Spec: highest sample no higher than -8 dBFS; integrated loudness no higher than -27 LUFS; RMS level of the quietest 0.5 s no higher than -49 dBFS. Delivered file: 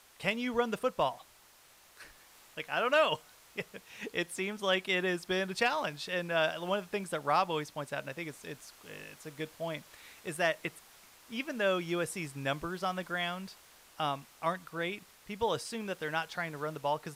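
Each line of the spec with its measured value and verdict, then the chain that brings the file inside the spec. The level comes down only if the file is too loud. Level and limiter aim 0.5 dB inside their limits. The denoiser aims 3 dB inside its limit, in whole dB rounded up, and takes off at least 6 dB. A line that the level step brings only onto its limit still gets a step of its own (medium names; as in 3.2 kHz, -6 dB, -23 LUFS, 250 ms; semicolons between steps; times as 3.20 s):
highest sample -17.0 dBFS: pass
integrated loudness -34.0 LUFS: pass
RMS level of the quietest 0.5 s -61 dBFS: pass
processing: none needed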